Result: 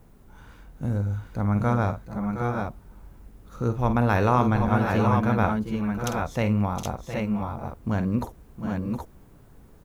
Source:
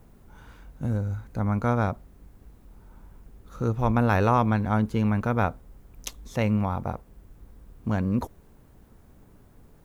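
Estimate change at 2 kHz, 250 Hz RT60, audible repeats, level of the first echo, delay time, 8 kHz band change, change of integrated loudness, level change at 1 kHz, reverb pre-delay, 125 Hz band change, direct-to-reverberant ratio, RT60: +2.5 dB, none, 3, -10.0 dB, 49 ms, +2.0 dB, +0.5 dB, +2.0 dB, none, +1.5 dB, none, none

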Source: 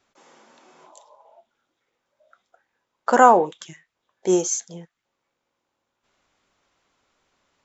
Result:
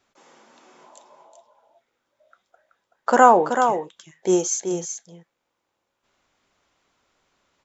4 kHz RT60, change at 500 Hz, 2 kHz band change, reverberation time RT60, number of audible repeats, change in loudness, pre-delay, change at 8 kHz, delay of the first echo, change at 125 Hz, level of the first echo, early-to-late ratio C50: none, +1.0 dB, +1.0 dB, none, 1, -0.5 dB, none, n/a, 0.379 s, +1.0 dB, -7.0 dB, none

